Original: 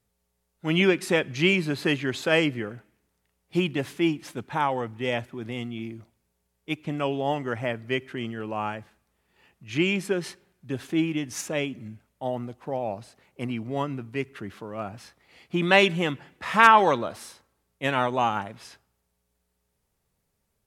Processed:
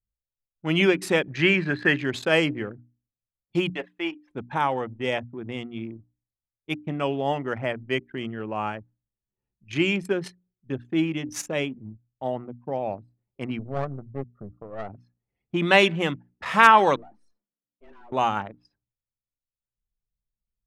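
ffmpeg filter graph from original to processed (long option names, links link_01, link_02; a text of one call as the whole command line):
ffmpeg -i in.wav -filter_complex "[0:a]asettb=1/sr,asplit=3[link_01][link_02][link_03];[link_01]atrim=end=1.324[link_04];[link_02]atrim=start=1.32:end=1.99,asetpts=PTS-STARTPTS,afade=type=in:duration=0.004:curve=qsin,afade=type=out:start_time=0.666:duration=0.004:curve=qsin,lowpass=frequency=3400:poles=1,equalizer=frequency=1700:width=3:gain=12.5[link_05];[link_03]atrim=start=1.986[link_06];[link_04][link_05]acrossfade=duration=0.004:curve1=hsin:curve2=qsin[link_07];[link_07][link_06]acrossfade=duration=0.004:curve1=qsin:curve2=hsin,asettb=1/sr,asplit=3[link_08][link_09][link_10];[link_08]atrim=end=3.704[link_11];[link_09]atrim=start=3.7:end=4.31,asetpts=PTS-STARTPTS,afade=type=in:duration=0.004:curve=qsin,afade=type=out:start_time=0.606:duration=0.004:curve=qsin,acrossover=split=3800[link_12][link_13];[link_13]acompressor=threshold=-50dB:ratio=4:attack=1:release=60[link_14];[link_12][link_14]amix=inputs=2:normalize=0,highpass=530,asplit=2[link_15][link_16];[link_16]adelay=39,volume=-14dB[link_17];[link_15][link_17]amix=inputs=2:normalize=0,atrim=end_sample=26901[link_18];[link_10]atrim=start=4.306[link_19];[link_11][link_18]acrossfade=duration=0.004:curve1=hsin:curve2=qsin[link_20];[link_20][link_19]acrossfade=duration=0.004:curve1=qsin:curve2=hsin,asettb=1/sr,asplit=3[link_21][link_22][link_23];[link_21]atrim=end=13.594[link_24];[link_22]atrim=start=13.59:end=14.89,asetpts=PTS-STARTPTS,afade=type=in:duration=0.004:curve=qsin,afade=type=out:start_time=1.296:duration=0.004:curve=qsin,lowpass=frequency=1200:width=0.5412,lowpass=frequency=1200:width=1.3066,aecho=1:1:1.6:0.69,atrim=end_sample=57330,aeval=exprs='clip(val(0),-1,0.0106)':channel_layout=same[link_25];[link_23]atrim=start=14.886[link_26];[link_24][link_25]acrossfade=duration=0.004:curve1=hsin:curve2=qsin[link_27];[link_27][link_26]acrossfade=duration=0.004:curve1=qsin:curve2=hsin,asettb=1/sr,asplit=3[link_28][link_29][link_30];[link_28]atrim=end=16.964[link_31];[link_29]atrim=start=16.96:end=18.12,asetpts=PTS-STARTPTS,afade=type=in:duration=0.004:curve=qsin,afade=type=out:start_time=1.156:duration=0.004:curve=qsin,lowpass=11000,afreqshift=110,aeval=exprs='(tanh(112*val(0)+0.4)-tanh(0.4))/112':channel_layout=same[link_32];[link_30]atrim=start=18.116[link_33];[link_31][link_32]acrossfade=duration=0.004:curve1=hsin:curve2=qsin[link_34];[link_34][link_33]acrossfade=duration=0.004:curve1=qsin:curve2=hsin,anlmdn=2.51,bandreject=frequency=60:width_type=h:width=6,bandreject=frequency=120:width_type=h:width=6,bandreject=frequency=180:width_type=h:width=6,bandreject=frequency=240:width_type=h:width=6,bandreject=frequency=300:width_type=h:width=6,volume=1dB" out.wav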